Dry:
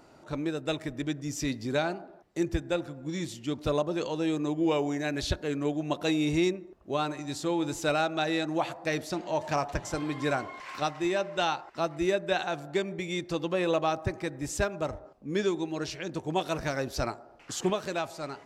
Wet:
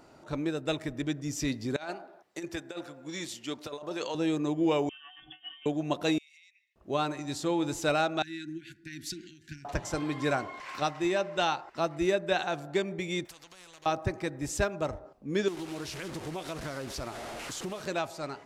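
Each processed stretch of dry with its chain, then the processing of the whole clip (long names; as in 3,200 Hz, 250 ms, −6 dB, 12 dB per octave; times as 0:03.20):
0:01.76–0:04.15: high-pass filter 690 Hz 6 dB per octave + compressor whose output falls as the input rises −35 dBFS, ratio −0.5
0:04.89–0:05.66: stiff-string resonator 230 Hz, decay 0.3 s, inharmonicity 0.008 + voice inversion scrambler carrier 3,400 Hz
0:06.18–0:06.76: Butterworth high-pass 1,900 Hz 96 dB per octave + high-shelf EQ 3,700 Hz −11 dB + downward compressor 20 to 1, threshold −54 dBFS
0:08.22–0:09.65: downward compressor, threshold −36 dBFS + linear-phase brick-wall band-stop 390–1,400 Hz + multiband upward and downward expander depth 100%
0:13.25–0:13.86: downward compressor 3 to 1, threshold −45 dBFS + every bin compressed towards the loudest bin 4 to 1
0:15.48–0:17.82: linear delta modulator 64 kbit/s, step −34 dBFS + downward compressor 4 to 1, threshold −34 dBFS + highs frequency-modulated by the lows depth 0.33 ms
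whole clip: no processing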